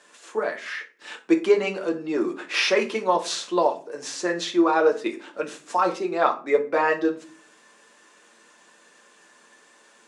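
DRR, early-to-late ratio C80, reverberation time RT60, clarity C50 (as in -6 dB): 2.0 dB, 19.0 dB, 0.40 s, 13.5 dB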